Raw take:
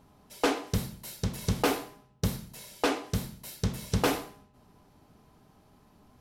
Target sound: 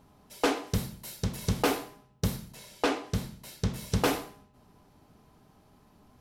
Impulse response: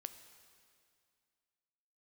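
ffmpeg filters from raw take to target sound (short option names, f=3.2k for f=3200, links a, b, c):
-filter_complex "[0:a]asettb=1/sr,asplit=3[a][b][c];[a]atrim=end=2.524[d];[b]atrim=start=2.52:end=3.76,asetpts=PTS-STARTPTS,afade=t=in:d=0.004:c=qsin,afade=t=out:st=1.236:d=0.004:c=qsin,highshelf=f=9.9k:g=-9[e];[c]atrim=start=3.756[f];[d][e]acrossfade=d=0.004:c1=hsin:c2=qsin[g];[g][f]acrossfade=d=0.004:c1=qsin:c2=hsin"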